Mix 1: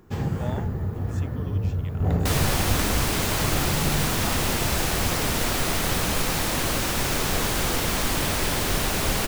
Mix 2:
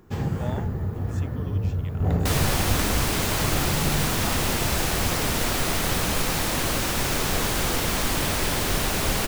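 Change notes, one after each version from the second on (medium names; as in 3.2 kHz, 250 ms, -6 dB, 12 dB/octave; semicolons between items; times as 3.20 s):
no change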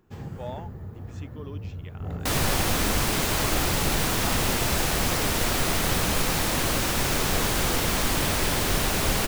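speech: add distance through air 95 m; first sound -10.5 dB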